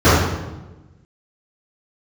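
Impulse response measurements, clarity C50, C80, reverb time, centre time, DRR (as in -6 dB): -2.0 dB, 2.0 dB, 1.1 s, 83 ms, -18.0 dB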